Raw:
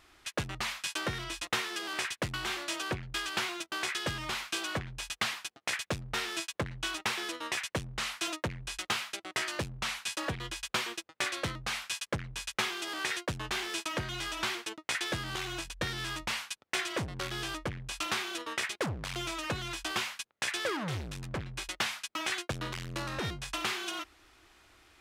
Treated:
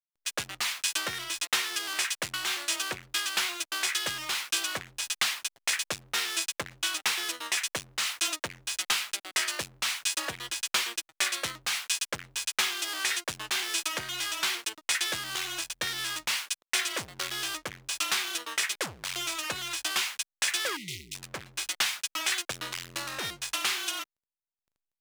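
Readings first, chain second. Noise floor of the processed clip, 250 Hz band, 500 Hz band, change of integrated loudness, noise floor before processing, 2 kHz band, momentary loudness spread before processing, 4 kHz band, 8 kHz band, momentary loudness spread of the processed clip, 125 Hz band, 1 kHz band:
under -85 dBFS, -6.5 dB, -3.5 dB, +4.5 dB, -70 dBFS, +3.0 dB, 4 LU, +6.0 dB, +9.0 dB, 6 LU, -11.0 dB, +0.5 dB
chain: backlash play -44 dBFS; spectral delete 20.76–21.15, 410–1900 Hz; tilt +3.5 dB/oct

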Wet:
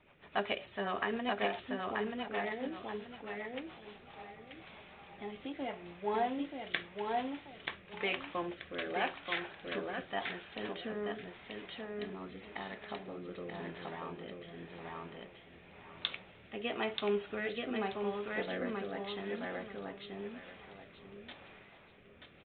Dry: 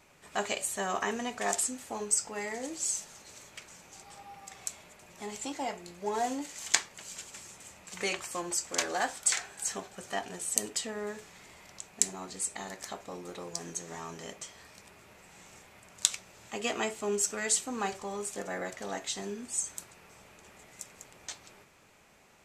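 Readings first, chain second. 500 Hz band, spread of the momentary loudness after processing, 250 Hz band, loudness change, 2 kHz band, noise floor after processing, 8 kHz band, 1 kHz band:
0.0 dB, 16 LU, +0.5 dB, -6.0 dB, -1.5 dB, -58 dBFS, under -40 dB, -2.0 dB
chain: feedback echo 0.932 s, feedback 27%, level -3 dB; rotary speaker horn 7.5 Hz, later 0.9 Hz, at 3.49; downsampling 8000 Hz

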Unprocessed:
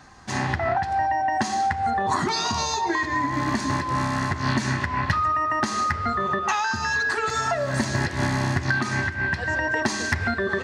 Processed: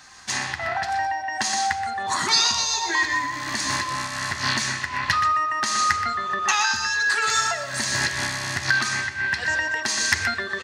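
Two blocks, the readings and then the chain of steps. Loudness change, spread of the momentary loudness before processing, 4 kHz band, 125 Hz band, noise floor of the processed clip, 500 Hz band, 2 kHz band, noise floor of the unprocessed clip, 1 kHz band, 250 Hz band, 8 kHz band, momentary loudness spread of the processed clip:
+1.5 dB, 2 LU, +8.0 dB, -10.0 dB, -33 dBFS, -7.0 dB, +3.0 dB, -31 dBFS, -1.0 dB, -10.0 dB, +9.0 dB, 7 LU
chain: tilt shelf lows -10 dB, about 1200 Hz; echo 0.124 s -9.5 dB; tremolo triangle 1.4 Hz, depth 50%; gain +1.5 dB

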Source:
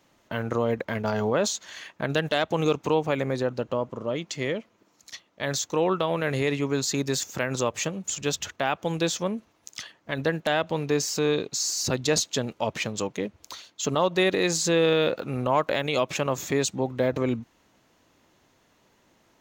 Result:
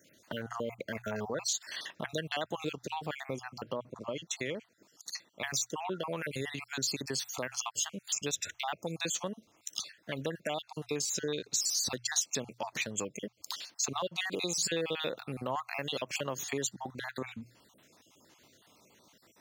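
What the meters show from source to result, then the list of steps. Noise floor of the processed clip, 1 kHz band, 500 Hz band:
-68 dBFS, -9.5 dB, -13.0 dB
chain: random spectral dropouts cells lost 46%; compressor 2:1, threshold -41 dBFS, peak gain reduction 12.5 dB; HPF 87 Hz; high shelf 2600 Hz +8.5 dB; notches 60/120 Hz

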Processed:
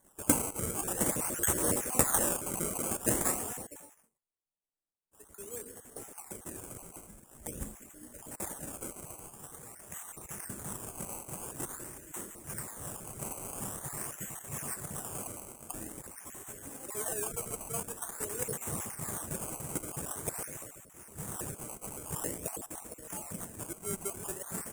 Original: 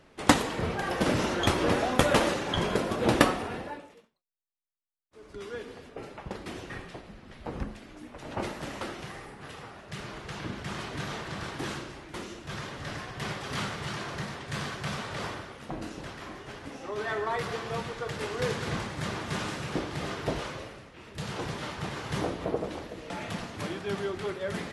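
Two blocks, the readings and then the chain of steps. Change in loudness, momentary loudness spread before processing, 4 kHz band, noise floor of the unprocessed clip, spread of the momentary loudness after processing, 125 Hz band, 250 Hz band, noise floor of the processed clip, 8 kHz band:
-3.0 dB, 17 LU, -14.5 dB, -58 dBFS, 17 LU, -8.0 dB, -8.0 dB, -67 dBFS, +9.5 dB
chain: random spectral dropouts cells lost 37%; decimation with a swept rate 17×, swing 100% 0.47 Hz; resonant high shelf 6100 Hz +13.5 dB, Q 3; gain -6.5 dB

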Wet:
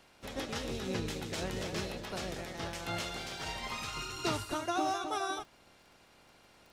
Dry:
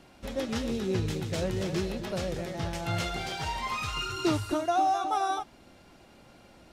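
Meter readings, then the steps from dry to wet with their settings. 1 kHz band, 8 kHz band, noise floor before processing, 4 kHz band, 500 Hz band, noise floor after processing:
-8.0 dB, -1.0 dB, -56 dBFS, -2.5 dB, -6.5 dB, -62 dBFS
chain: spectral limiter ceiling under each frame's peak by 13 dB; crackle 17/s -43 dBFS; gain -6.5 dB

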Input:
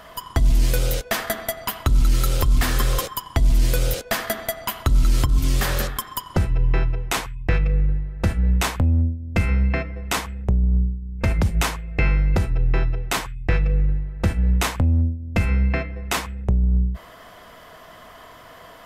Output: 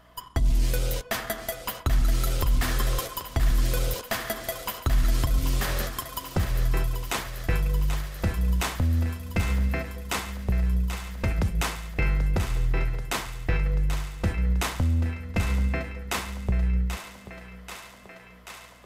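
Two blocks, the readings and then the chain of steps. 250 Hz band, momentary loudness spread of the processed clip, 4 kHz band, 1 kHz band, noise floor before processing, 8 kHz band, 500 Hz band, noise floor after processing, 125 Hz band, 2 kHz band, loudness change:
-5.0 dB, 7 LU, -4.5 dB, -4.5 dB, -45 dBFS, -4.5 dB, -5.0 dB, -48 dBFS, -5.5 dB, -4.5 dB, -5.5 dB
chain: gate -35 dBFS, range -8 dB; hum 60 Hz, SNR 33 dB; on a send: thinning echo 0.785 s, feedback 78%, high-pass 300 Hz, level -9 dB; on the sum: gain -5.5 dB

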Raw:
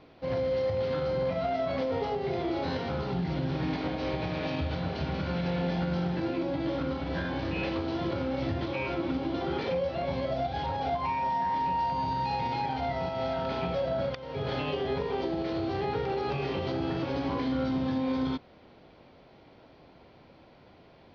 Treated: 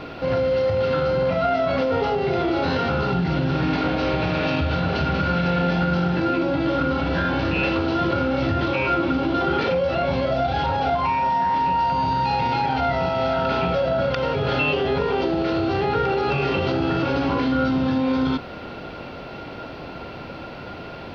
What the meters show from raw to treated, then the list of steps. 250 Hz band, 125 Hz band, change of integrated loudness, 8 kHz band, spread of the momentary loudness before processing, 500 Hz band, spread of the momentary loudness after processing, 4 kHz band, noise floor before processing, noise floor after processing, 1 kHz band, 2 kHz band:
+8.5 dB, +8.5 dB, +9.0 dB, n/a, 3 LU, +8.5 dB, 14 LU, +9.5 dB, -56 dBFS, -36 dBFS, +9.5 dB, +12.5 dB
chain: small resonant body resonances 1400/2700 Hz, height 15 dB, ringing for 60 ms; in parallel at 0 dB: negative-ratio compressor -41 dBFS; on the sum: gain +6.5 dB

